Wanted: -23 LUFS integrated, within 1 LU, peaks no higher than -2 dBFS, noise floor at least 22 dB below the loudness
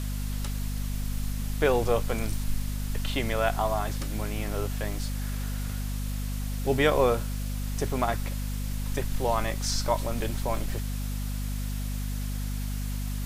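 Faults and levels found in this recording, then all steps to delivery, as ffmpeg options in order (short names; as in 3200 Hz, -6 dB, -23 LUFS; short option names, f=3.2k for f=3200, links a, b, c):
hum 50 Hz; harmonics up to 250 Hz; hum level -29 dBFS; noise floor -32 dBFS; noise floor target -52 dBFS; loudness -30.0 LUFS; peak -9.5 dBFS; loudness target -23.0 LUFS
-> -af "bandreject=f=50:t=h:w=4,bandreject=f=100:t=h:w=4,bandreject=f=150:t=h:w=4,bandreject=f=200:t=h:w=4,bandreject=f=250:t=h:w=4"
-af "afftdn=nr=20:nf=-32"
-af "volume=7dB"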